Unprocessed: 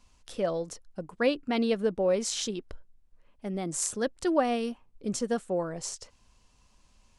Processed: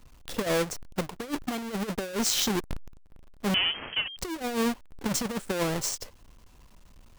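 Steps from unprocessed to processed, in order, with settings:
each half-wave held at its own peak
compressor whose output falls as the input rises −27 dBFS, ratio −0.5
0:03.54–0:04.17: voice inversion scrambler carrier 3,200 Hz

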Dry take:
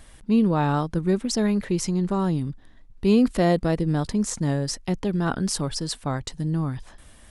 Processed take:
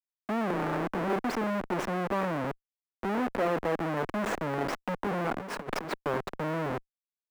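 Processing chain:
0:00.50–0:01.13: frequency shifter +15 Hz
0:03.06–0:03.48: mains-hum notches 60/120/180/240/300/360/420 Hz
on a send: tape delay 77 ms, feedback 38%, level −21.5 dB, low-pass 1,200 Hz
on the sum: comparator with hysteresis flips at −31 dBFS
three-way crossover with the lows and the highs turned down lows −19 dB, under 240 Hz, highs −19 dB, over 2,200 Hz
0:05.38–0:05.92: compressor whose output falls as the input rises −35 dBFS, ratio −0.5

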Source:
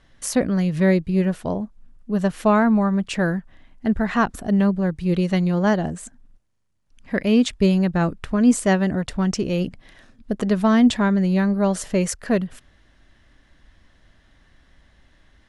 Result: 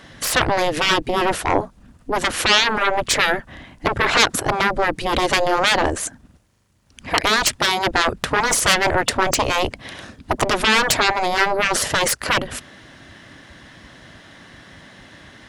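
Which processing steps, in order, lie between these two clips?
sine wavefolder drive 13 dB, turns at −6.5 dBFS
gate on every frequency bin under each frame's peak −10 dB weak

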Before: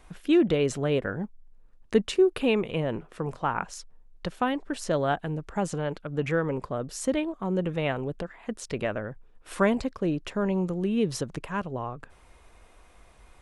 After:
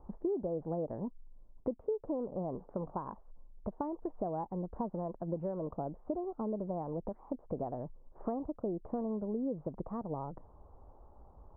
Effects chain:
speed change +16%
downward compressor 5 to 1, threshold −33 dBFS, peak gain reduction 15.5 dB
elliptic low-pass filter 990 Hz, stop band 80 dB

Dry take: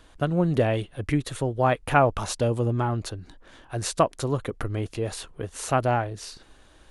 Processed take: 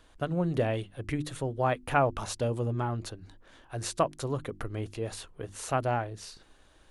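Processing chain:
mains-hum notches 50/100/150/200/250/300/350 Hz
level −5.5 dB

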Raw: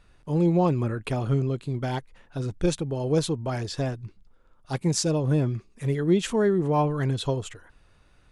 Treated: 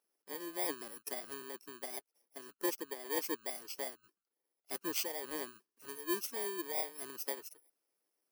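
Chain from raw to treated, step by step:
samples in bit-reversed order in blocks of 32 samples
Chebyshev high-pass filter 330 Hz, order 3
harmonic and percussive parts rebalanced harmonic −10 dB
noise reduction from a noise print of the clip's start 8 dB
level −7 dB

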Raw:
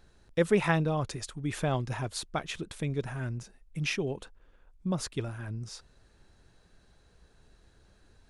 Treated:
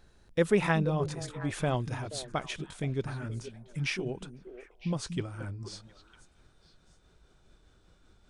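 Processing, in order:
pitch glide at a constant tempo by −2 semitones starting unshifted
echo through a band-pass that steps 239 ms, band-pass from 180 Hz, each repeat 1.4 octaves, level −7 dB

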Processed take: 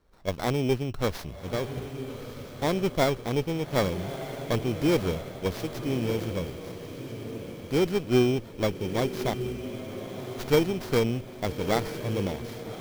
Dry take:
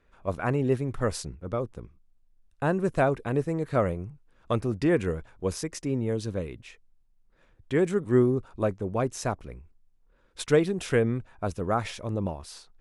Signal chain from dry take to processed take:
samples in bit-reversed order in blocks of 16 samples
feedback delay with all-pass diffusion 1,247 ms, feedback 47%, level −9.5 dB
windowed peak hold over 5 samples

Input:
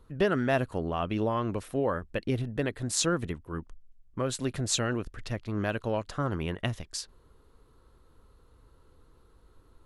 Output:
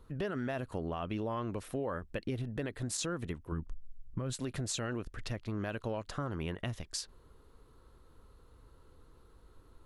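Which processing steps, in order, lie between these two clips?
0:03.52–0:04.33: bass and treble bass +10 dB, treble −1 dB
brickwall limiter −21 dBFS, peak gain reduction 9 dB
downward compressor 2.5 to 1, threshold −35 dBFS, peak gain reduction 7 dB

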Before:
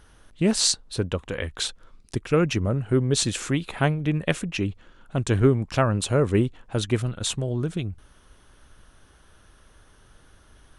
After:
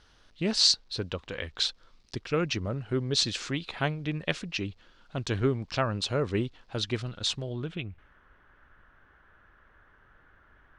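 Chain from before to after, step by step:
low-shelf EQ 470 Hz −4 dB
bit reduction 11 bits
low-pass filter sweep 4,700 Hz → 1,700 Hz, 0:07.39–0:08.18
level −5 dB

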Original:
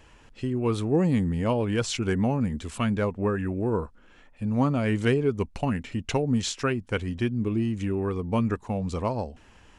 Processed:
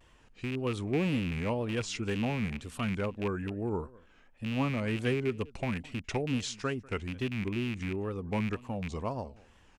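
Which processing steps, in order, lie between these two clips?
loose part that buzzes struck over −28 dBFS, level −21 dBFS
single-tap delay 204 ms −23 dB
tape wow and flutter 130 cents
level −7 dB

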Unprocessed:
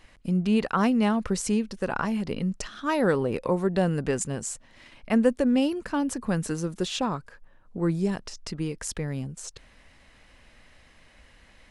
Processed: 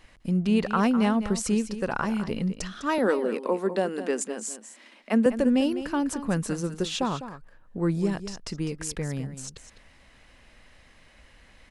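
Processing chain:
0:02.98–0:05.26: elliptic high-pass filter 210 Hz, stop band 40 dB
single-tap delay 203 ms −12 dB

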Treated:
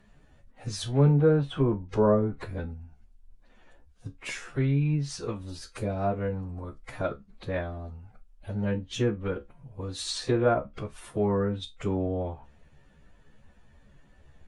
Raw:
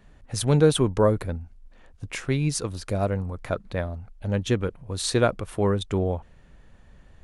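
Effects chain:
time stretch by phase vocoder 2×
treble cut that deepens with the level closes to 1,500 Hz, closed at −18 dBFS
tuned comb filter 70 Hz, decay 0.17 s, harmonics all, mix 80%
level +2 dB

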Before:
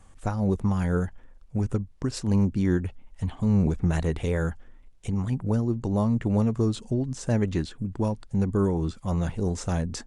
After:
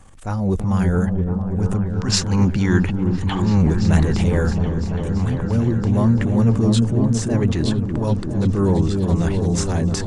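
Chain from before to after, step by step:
transient designer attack −9 dB, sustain +6 dB
gain on a spectral selection 0:01.89–0:03.62, 760–7,500 Hz +8 dB
echo whose low-pass opens from repeat to repeat 336 ms, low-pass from 400 Hz, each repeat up 1 octave, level −3 dB
level +6 dB

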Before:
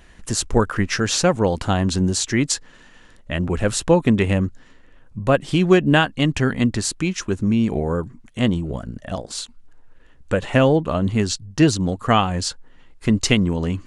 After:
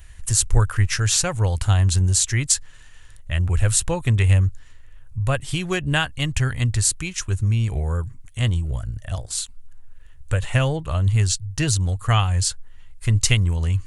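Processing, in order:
drawn EQ curve 110 Hz 0 dB, 210 Hz −23 dB, 2,200 Hz −9 dB, 5,200 Hz −8 dB, 9,600 Hz +2 dB
level +7.5 dB

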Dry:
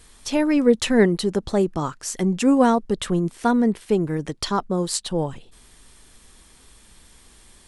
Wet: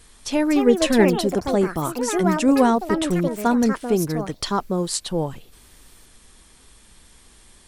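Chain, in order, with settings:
delay with pitch and tempo change per echo 311 ms, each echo +5 semitones, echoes 2, each echo −6 dB

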